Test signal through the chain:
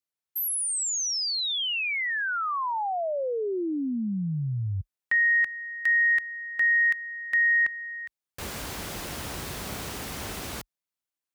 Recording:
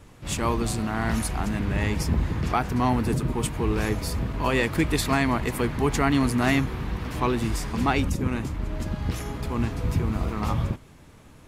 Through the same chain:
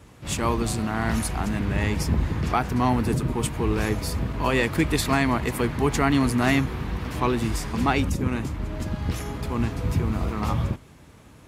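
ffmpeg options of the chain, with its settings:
ffmpeg -i in.wav -af "highpass=frequency=42:width=0.5412,highpass=frequency=42:width=1.3066,volume=1dB" out.wav

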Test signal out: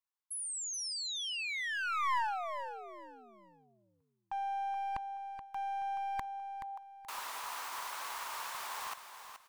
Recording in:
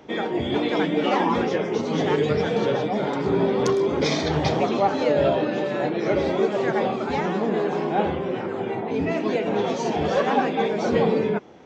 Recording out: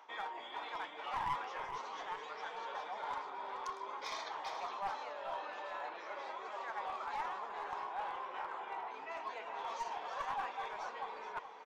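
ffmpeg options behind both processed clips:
ffmpeg -i in.wav -af "areverse,acompressor=threshold=-30dB:ratio=8,areverse,highpass=frequency=1000:width_type=q:width=3.8,aeval=exprs='clip(val(0),-1,0.0422)':channel_layout=same,aecho=1:1:427|854|1281:0.335|0.0904|0.0244,volume=-8dB" out.wav

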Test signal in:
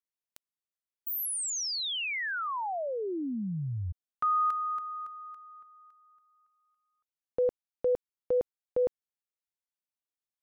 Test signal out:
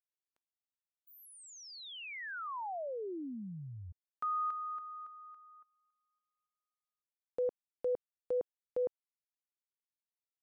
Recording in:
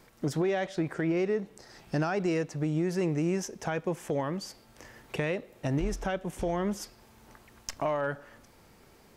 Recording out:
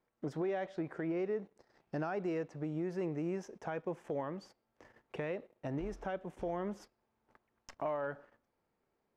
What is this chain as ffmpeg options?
ffmpeg -i in.wav -af "lowpass=frequency=1000:poles=1,lowshelf=frequency=230:gain=-11,agate=range=-15dB:threshold=-56dB:ratio=3:release=23:detection=rms,volume=-3.5dB" out.wav

